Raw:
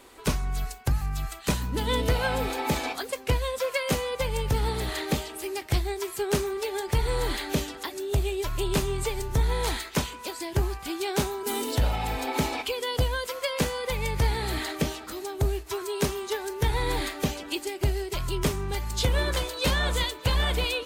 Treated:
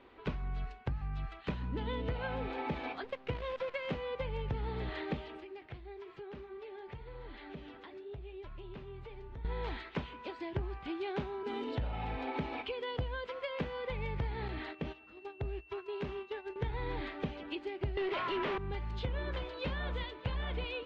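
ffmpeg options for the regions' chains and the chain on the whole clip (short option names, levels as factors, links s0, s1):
-filter_complex "[0:a]asettb=1/sr,asplit=3[s0][s1][s2];[s0]atrim=end=3.044[s3];[s1]atrim=start=3.04:end=3.96,asetpts=PTS-STARTPTS,afade=t=in:d=0.004:c=qsin,afade=t=out:st=0.916:d=0.004:c=qsin,highpass=72,acrusher=bits=6:dc=4:mix=0:aa=0.000001[s4];[s2]atrim=start=3.956[s5];[s3][s4]acrossfade=d=0.004:c1=hsin:c2=qsin[s6];[s6][s5]acrossfade=d=0.004:c1=qsin:c2=hsin,asettb=1/sr,asplit=3[s7][s8][s9];[s7]atrim=end=5.404[s10];[s8]atrim=start=5.4:end=9.45,asetpts=PTS-STARTPTS,afade=t=in:d=0.004:c=qsin,afade=t=out:st=4.046:d=0.004:c=qsin,lowpass=6300,acompressor=threshold=0.02:ratio=5:attack=3.2:release=140:knee=1:detection=peak,flanger=delay=3.4:depth=6.7:regen=-61:speed=1:shape=sinusoidal[s11];[s9]atrim=start=9.446[s12];[s10][s11]acrossfade=d=0.004:c1=hsin:c2=qsin[s13];[s13][s12]acrossfade=d=0.004:c1=qsin:c2=hsin,asettb=1/sr,asplit=3[s14][s15][s16];[s14]atrim=end=14.484[s17];[s15]atrim=start=14.48:end=16.56,asetpts=PTS-STARTPTS,afade=t=in:d=0.004:c=qsin,afade=t=out:st=2.076:d=0.004:c=qsin,agate=range=0.2:threshold=0.02:ratio=16:release=100:detection=peak,acompressor=threshold=0.0316:ratio=2.5:attack=3.2:release=140:knee=1:detection=peak,aeval=exprs='val(0)+0.00355*sin(2*PI*2700*n/s)':c=same[s18];[s16]atrim=start=16.556[s19];[s17][s18]acrossfade=d=0.004:c1=hsin:c2=qsin[s20];[s20][s19]acrossfade=d=0.004:c1=qsin:c2=hsin,asettb=1/sr,asplit=3[s21][s22][s23];[s21]atrim=end=17.974[s24];[s22]atrim=start=17.97:end=18.58,asetpts=PTS-STARTPTS,afade=t=in:d=0.004:c=qsin,afade=t=out:st=0.606:d=0.004:c=qsin,highpass=320,aemphasis=mode=reproduction:type=50fm,asplit=2[s25][s26];[s26]highpass=f=720:p=1,volume=44.7,asoftclip=type=tanh:threshold=0.211[s27];[s25][s27]amix=inputs=2:normalize=0,lowpass=f=5100:p=1,volume=0.501[s28];[s23]atrim=start=18.576[s29];[s24][s28]acrossfade=d=0.004:c1=hsin:c2=qsin[s30];[s30][s29]acrossfade=d=0.004:c1=qsin:c2=hsin,acompressor=threshold=0.0447:ratio=6,lowpass=f=3200:w=0.5412,lowpass=f=3200:w=1.3066,equalizer=f=160:t=o:w=2.9:g=3.5,volume=0.422"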